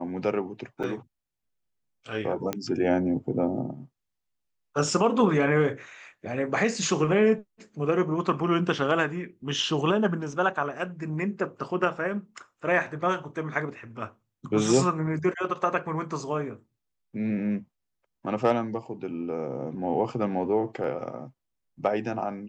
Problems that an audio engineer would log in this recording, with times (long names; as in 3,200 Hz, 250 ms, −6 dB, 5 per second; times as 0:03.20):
0:00.83–0:00.84: drop-out 6 ms
0:02.53: click −13 dBFS
0:20.84: drop-out 2.6 ms